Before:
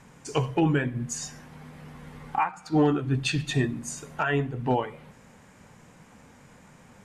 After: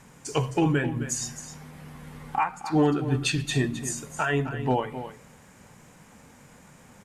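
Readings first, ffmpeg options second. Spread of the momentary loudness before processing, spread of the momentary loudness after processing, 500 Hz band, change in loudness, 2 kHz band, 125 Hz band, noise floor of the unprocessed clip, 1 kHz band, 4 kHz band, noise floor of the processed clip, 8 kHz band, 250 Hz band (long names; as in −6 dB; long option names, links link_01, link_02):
21 LU, 18 LU, +0.5 dB, +0.5 dB, +0.5 dB, 0.0 dB, −54 dBFS, +0.5 dB, +1.5 dB, −53 dBFS, +4.5 dB, +0.5 dB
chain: -af "highshelf=frequency=8300:gain=10,aecho=1:1:263:0.266"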